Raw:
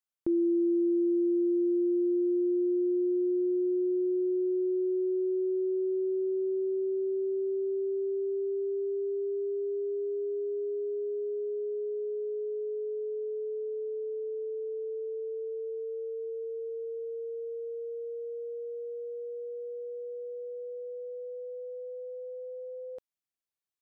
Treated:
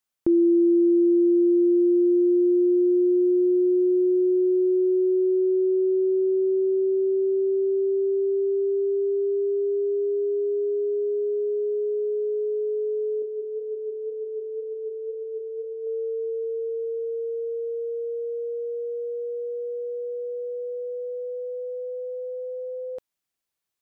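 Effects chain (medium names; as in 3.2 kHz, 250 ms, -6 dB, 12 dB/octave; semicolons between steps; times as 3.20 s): 13.22–15.87 s: flange 2 Hz, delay 9.2 ms, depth 3.8 ms, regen +68%; trim +8 dB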